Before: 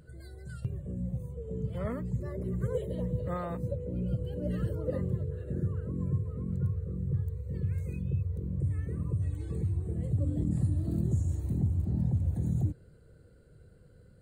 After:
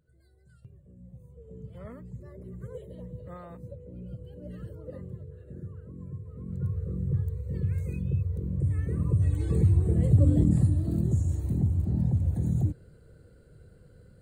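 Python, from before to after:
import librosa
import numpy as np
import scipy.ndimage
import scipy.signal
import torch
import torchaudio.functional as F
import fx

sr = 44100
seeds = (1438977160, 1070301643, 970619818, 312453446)

y = fx.gain(x, sr, db=fx.line((0.97, -16.0), (1.42, -9.0), (6.17, -9.0), (6.83, 3.0), (8.57, 3.0), (9.61, 9.5), (10.34, 9.5), (10.85, 3.0)))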